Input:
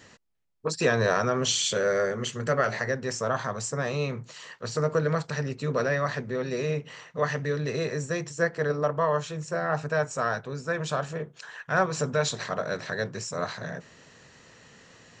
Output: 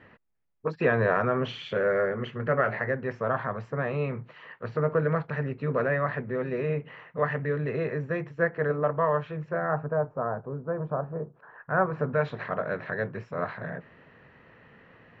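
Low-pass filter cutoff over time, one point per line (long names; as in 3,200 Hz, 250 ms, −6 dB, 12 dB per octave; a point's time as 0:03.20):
low-pass filter 24 dB per octave
0:09.47 2,400 Hz
0:10.00 1,100 Hz
0:11.26 1,100 Hz
0:12.34 2,400 Hz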